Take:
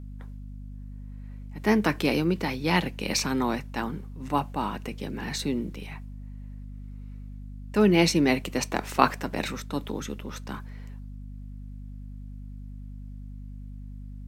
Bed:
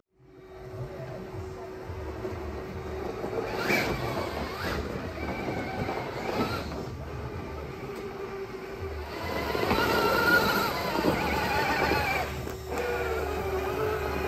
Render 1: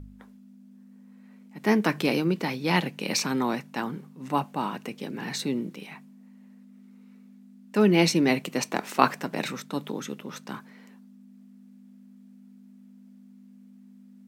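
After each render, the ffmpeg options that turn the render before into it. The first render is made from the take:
ffmpeg -i in.wav -af "bandreject=frequency=50:width_type=h:width=4,bandreject=frequency=100:width_type=h:width=4,bandreject=frequency=150:width_type=h:width=4" out.wav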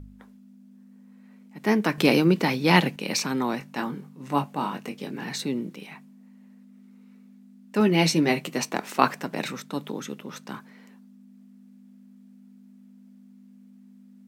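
ffmpeg -i in.wav -filter_complex "[0:a]asettb=1/sr,asplit=3[link_01][link_02][link_03];[link_01]atrim=end=3.594[link_04];[link_02]atrim=start=3.59:end=5.23,asetpts=PTS-STARTPTS,afade=type=in:duration=0.004:curve=qsin,afade=type=out:start_time=1.636:duration=0.004:curve=qsin,asplit=2[link_05][link_06];[link_06]adelay=21,volume=-6.5dB[link_07];[link_05][link_07]amix=inputs=2:normalize=0,atrim=end_sample=72324[link_08];[link_03]atrim=start=5.226[link_09];[link_04][link_08]acrossfade=duration=0.004:curve1=hsin:curve2=qsin[link_10];[link_10][link_09]acrossfade=duration=0.004:curve1=qsin:curve2=hsin,asettb=1/sr,asplit=3[link_11][link_12][link_13];[link_11]atrim=end=7.794[link_14];[link_12]atrim=start=7.79:end=8.7,asetpts=PTS-STARTPTS,afade=type=in:duration=0.004:curve=qsin,afade=type=out:start_time=0.906:duration=0.004:curve=qsin,asplit=2[link_15][link_16];[link_16]adelay=13,volume=-6dB[link_17];[link_15][link_17]amix=inputs=2:normalize=0,atrim=end_sample=40131[link_18];[link_13]atrim=start=8.696[link_19];[link_14][link_18]acrossfade=duration=0.004:curve1=hsin:curve2=qsin[link_20];[link_20][link_19]acrossfade=duration=0.004:curve1=qsin:curve2=hsin,asplit=3[link_21][link_22][link_23];[link_21]atrim=end=1.982[link_24];[link_22]atrim=start=1.978:end=2.962,asetpts=PTS-STARTPTS,volume=5.5dB[link_25];[link_23]atrim=start=2.958[link_26];[link_24][link_25]acrossfade=duration=0.004:curve1=hsin:curve2=hsin[link_27];[link_27][link_26]acrossfade=duration=0.004:curve1=hsin:curve2=hsin" out.wav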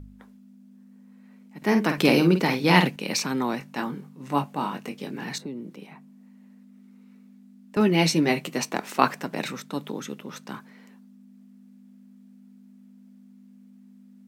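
ffmpeg -i in.wav -filter_complex "[0:a]asettb=1/sr,asplit=3[link_01][link_02][link_03];[link_01]atrim=end=1.574[link_04];[link_02]atrim=start=1.57:end=2.88,asetpts=PTS-STARTPTS,afade=type=in:duration=0.004:curve=qsin,afade=type=out:start_time=1.306:duration=0.004:curve=qsin,asplit=2[link_05][link_06];[link_06]adelay=49,volume=-7.5dB[link_07];[link_05][link_07]amix=inputs=2:normalize=0,atrim=end_sample=57771[link_08];[link_03]atrim=start=2.876[link_09];[link_04][link_08]acrossfade=duration=0.004:curve1=hsin:curve2=qsin[link_10];[link_10][link_09]acrossfade=duration=0.004:curve1=qsin:curve2=hsin,asettb=1/sr,asplit=3[link_11][link_12][link_13];[link_11]atrim=end=5.384[link_14];[link_12]atrim=start=5.38:end=7.77,asetpts=PTS-STARTPTS,afade=type=in:duration=0.004:curve=qsin,afade=type=out:start_time=2.386:duration=0.004:curve=qsin,acrossover=split=260|1200[link_15][link_16][link_17];[link_15]acompressor=threshold=-40dB:ratio=4[link_18];[link_16]acompressor=threshold=-37dB:ratio=4[link_19];[link_17]acompressor=threshold=-54dB:ratio=4[link_20];[link_18][link_19][link_20]amix=inputs=3:normalize=0[link_21];[link_13]atrim=start=7.766[link_22];[link_14][link_21]acrossfade=duration=0.004:curve1=hsin:curve2=qsin[link_23];[link_23][link_22]acrossfade=duration=0.004:curve1=qsin:curve2=hsin" out.wav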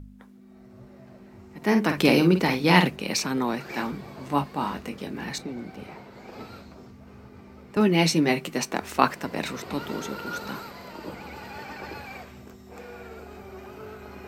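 ffmpeg -i in.wav -i bed.wav -filter_complex "[1:a]volume=-12.5dB[link_01];[0:a][link_01]amix=inputs=2:normalize=0" out.wav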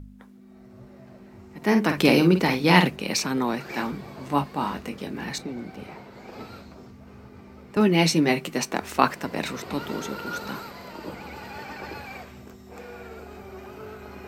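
ffmpeg -i in.wav -af "volume=1dB,alimiter=limit=-1dB:level=0:latency=1" out.wav

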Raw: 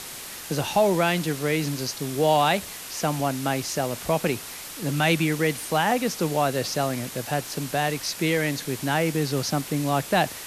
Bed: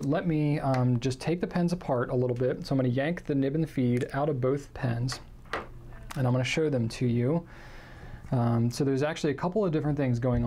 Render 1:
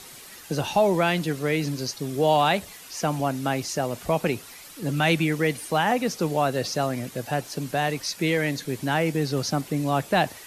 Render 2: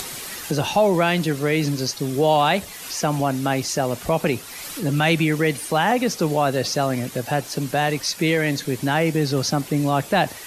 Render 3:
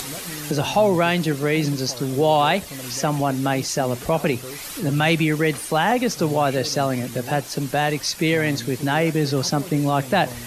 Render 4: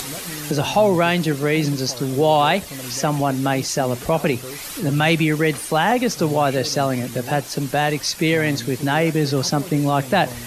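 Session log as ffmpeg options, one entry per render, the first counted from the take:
ffmpeg -i in.wav -af "afftdn=noise_reduction=9:noise_floor=-38" out.wav
ffmpeg -i in.wav -filter_complex "[0:a]asplit=2[link_01][link_02];[link_02]alimiter=limit=-19dB:level=0:latency=1,volume=-1dB[link_03];[link_01][link_03]amix=inputs=2:normalize=0,acompressor=mode=upward:threshold=-25dB:ratio=2.5" out.wav
ffmpeg -i in.wav -i bed.wav -filter_complex "[1:a]volume=-10dB[link_01];[0:a][link_01]amix=inputs=2:normalize=0" out.wav
ffmpeg -i in.wav -af "volume=1.5dB" out.wav

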